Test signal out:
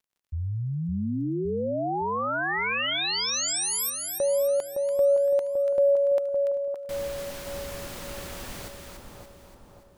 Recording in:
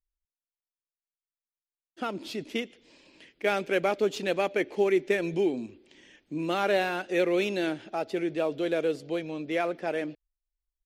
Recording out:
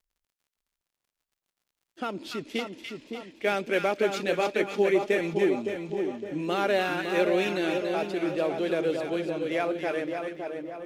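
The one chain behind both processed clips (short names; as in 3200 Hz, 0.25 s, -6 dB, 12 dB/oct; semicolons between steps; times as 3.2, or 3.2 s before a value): crackle 40/s -59 dBFS; on a send: split-band echo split 1200 Hz, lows 0.562 s, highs 0.288 s, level -5 dB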